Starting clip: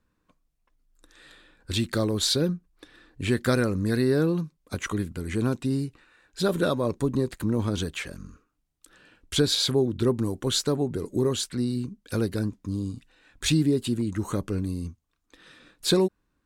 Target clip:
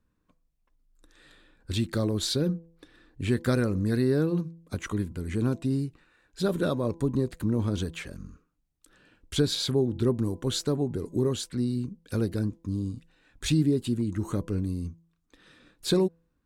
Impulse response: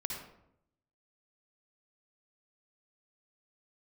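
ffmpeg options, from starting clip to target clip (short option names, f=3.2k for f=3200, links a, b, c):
-af "lowshelf=f=430:g=6,bandreject=f=166.4:t=h:w=4,bandreject=f=332.8:t=h:w=4,bandreject=f=499.2:t=h:w=4,bandreject=f=665.6:t=h:w=4,bandreject=f=832:t=h:w=4,bandreject=f=998.4:t=h:w=4,volume=-5.5dB"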